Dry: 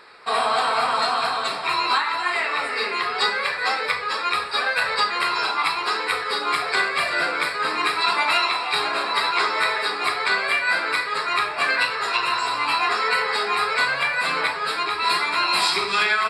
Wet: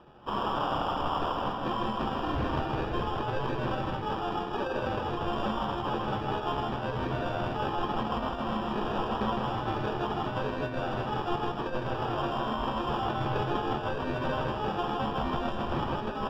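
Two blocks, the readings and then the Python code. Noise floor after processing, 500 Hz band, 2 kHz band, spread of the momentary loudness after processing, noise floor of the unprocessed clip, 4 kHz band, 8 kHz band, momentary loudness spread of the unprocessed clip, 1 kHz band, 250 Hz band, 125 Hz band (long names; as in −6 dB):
−35 dBFS, −2.5 dB, −19.0 dB, 2 LU, −28 dBFS, −16.5 dB, below −20 dB, 4 LU, −8.5 dB, +7.5 dB, +15.0 dB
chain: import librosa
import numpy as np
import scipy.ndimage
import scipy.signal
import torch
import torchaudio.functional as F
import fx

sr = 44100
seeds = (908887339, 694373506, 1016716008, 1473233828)

y = scipy.signal.sosfilt(scipy.signal.butter(2, 1200.0, 'highpass', fs=sr, output='sos'), x)
y = fx.high_shelf(y, sr, hz=3400.0, db=-6.0)
y = fx.over_compress(y, sr, threshold_db=-26.0, ratio=-0.5)
y = fx.sample_hold(y, sr, seeds[0], rate_hz=2100.0, jitter_pct=0)
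y = fx.air_absorb(y, sr, metres=300.0)
y = fx.doubler(y, sr, ms=14.0, db=-11.0)
y = y + 10.0 ** (-3.5 / 20.0) * np.pad(y, (int(159 * sr / 1000.0), 0))[:len(y)]
y = y * librosa.db_to_amplitude(-4.0)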